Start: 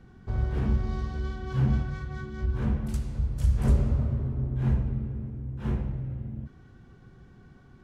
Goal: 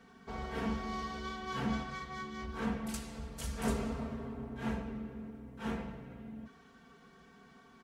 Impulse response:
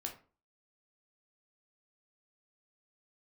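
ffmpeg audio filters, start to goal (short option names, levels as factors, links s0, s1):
-af "highpass=f=720:p=1,aecho=1:1:4.4:0.89,volume=1.26"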